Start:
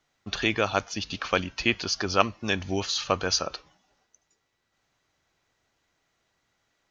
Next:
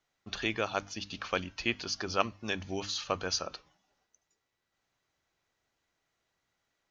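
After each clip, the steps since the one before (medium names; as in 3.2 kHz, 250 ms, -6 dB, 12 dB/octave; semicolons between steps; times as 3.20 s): hum notches 50/100/150/200/250/300 Hz; trim -7 dB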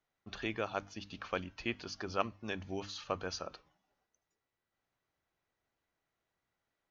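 treble shelf 3.2 kHz -10 dB; trim -3.5 dB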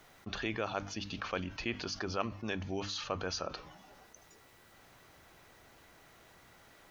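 level flattener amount 50%; trim -2.5 dB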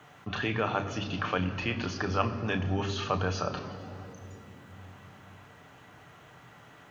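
reverberation RT60 3.5 s, pre-delay 3 ms, DRR 6 dB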